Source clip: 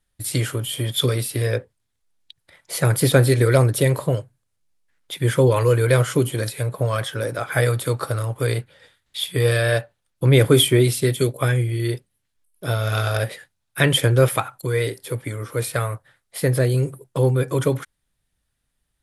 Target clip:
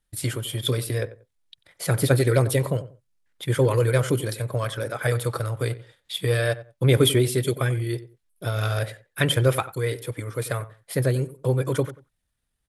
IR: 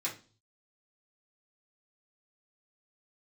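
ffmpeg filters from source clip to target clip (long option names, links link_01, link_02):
-filter_complex "[0:a]atempo=1.5,asplit=2[link_01][link_02];[link_02]adelay=92,lowpass=frequency=1500:poles=1,volume=-15dB,asplit=2[link_03][link_04];[link_04]adelay=92,lowpass=frequency=1500:poles=1,volume=0.23[link_05];[link_01][link_03][link_05]amix=inputs=3:normalize=0,volume=-3.5dB"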